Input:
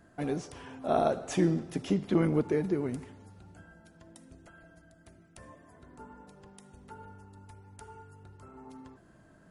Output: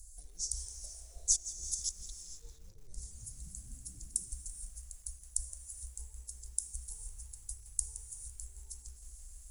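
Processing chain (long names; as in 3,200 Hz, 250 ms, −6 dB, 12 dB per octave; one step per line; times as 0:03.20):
low-shelf EQ 110 Hz −9.5 dB
treble cut that deepens with the level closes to 2,700 Hz, closed at −27 dBFS
low-shelf EQ 430 Hz +7.5 dB
hum removal 232.4 Hz, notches 32
compressor whose output falls as the input rises −35 dBFS, ratio −1
inverse Chebyshev band-stop filter 110–2,900 Hz, stop band 50 dB
0:02.26–0:04.29: echo with shifted repeats 240 ms, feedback 57%, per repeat +67 Hz, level −12.5 dB
reverb whose tail is shaped and stops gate 500 ms rising, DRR 10.5 dB
feedback echo at a low word length 168 ms, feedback 55%, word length 12 bits, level −14 dB
level +17.5 dB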